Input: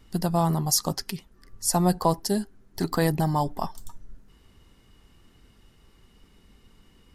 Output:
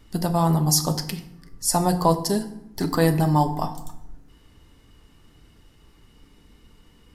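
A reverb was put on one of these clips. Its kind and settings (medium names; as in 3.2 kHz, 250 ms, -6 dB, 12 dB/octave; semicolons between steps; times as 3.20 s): FDN reverb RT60 0.8 s, low-frequency decay 1.5×, high-frequency decay 0.65×, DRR 7 dB; trim +2 dB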